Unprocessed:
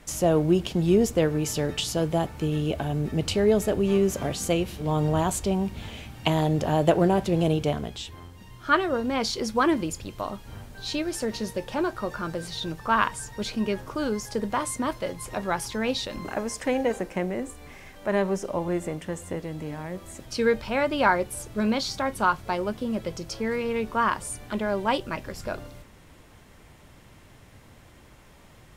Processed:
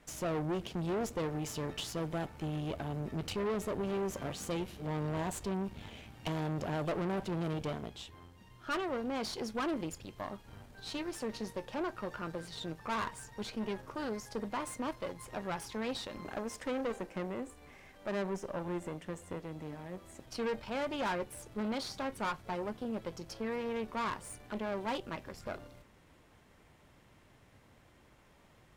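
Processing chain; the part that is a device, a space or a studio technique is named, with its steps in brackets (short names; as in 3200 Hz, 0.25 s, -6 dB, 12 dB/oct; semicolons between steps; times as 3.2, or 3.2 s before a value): tube preamp driven hard (tube stage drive 26 dB, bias 0.75; low shelf 140 Hz -5 dB; high shelf 4200 Hz -5.5 dB); gain -4 dB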